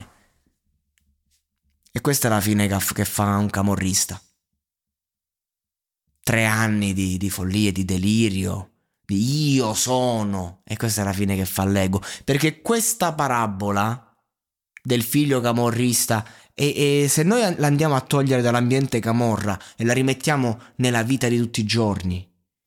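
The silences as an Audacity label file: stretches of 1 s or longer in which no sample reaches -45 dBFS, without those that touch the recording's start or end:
4.210000	6.240000	silence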